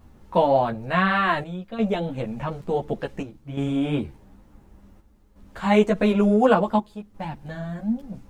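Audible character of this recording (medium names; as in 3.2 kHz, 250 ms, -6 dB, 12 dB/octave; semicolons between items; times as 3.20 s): chopped level 0.56 Hz, depth 65%, duty 80%; a quantiser's noise floor 12-bit, dither none; a shimmering, thickened sound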